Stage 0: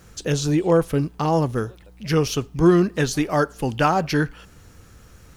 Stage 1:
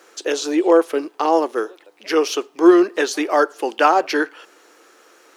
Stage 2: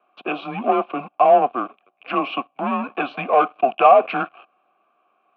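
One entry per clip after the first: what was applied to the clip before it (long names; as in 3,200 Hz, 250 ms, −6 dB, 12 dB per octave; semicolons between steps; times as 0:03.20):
elliptic high-pass filter 330 Hz, stop band 70 dB; high-shelf EQ 7,700 Hz −8.5 dB; level +5.5 dB
leveller curve on the samples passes 3; single-sideband voice off tune −130 Hz 240–3,400 Hz; formant filter a; level +3.5 dB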